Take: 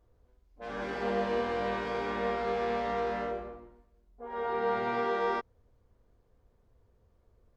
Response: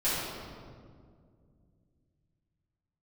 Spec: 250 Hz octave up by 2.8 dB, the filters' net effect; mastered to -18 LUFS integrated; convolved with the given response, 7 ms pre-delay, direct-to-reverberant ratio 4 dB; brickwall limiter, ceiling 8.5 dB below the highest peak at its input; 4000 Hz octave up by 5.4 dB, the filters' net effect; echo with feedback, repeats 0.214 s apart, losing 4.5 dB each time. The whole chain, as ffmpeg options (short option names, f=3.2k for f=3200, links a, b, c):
-filter_complex "[0:a]equalizer=f=250:t=o:g=3.5,equalizer=f=4k:t=o:g=7,alimiter=level_in=2.5dB:limit=-24dB:level=0:latency=1,volume=-2.5dB,aecho=1:1:214|428|642|856|1070|1284|1498|1712|1926:0.596|0.357|0.214|0.129|0.0772|0.0463|0.0278|0.0167|0.01,asplit=2[a][b];[1:a]atrim=start_sample=2205,adelay=7[c];[b][c]afir=irnorm=-1:irlink=0,volume=-15dB[d];[a][d]amix=inputs=2:normalize=0,volume=16.5dB"